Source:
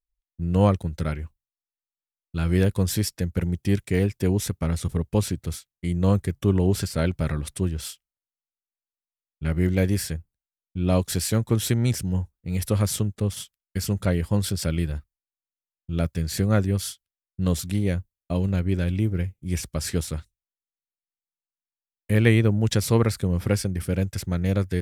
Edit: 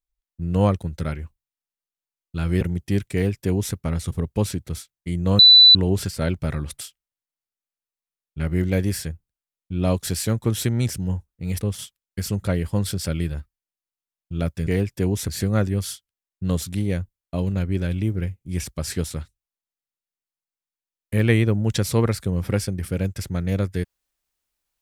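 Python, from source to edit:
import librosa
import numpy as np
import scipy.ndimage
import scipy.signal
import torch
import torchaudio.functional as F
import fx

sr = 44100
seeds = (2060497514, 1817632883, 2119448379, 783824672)

y = fx.edit(x, sr, fx.cut(start_s=2.61, length_s=0.77),
    fx.duplicate(start_s=3.9, length_s=0.61, to_s=16.25),
    fx.bleep(start_s=6.16, length_s=0.36, hz=3980.0, db=-6.5),
    fx.cut(start_s=7.58, length_s=0.28),
    fx.cut(start_s=12.66, length_s=0.53), tone=tone)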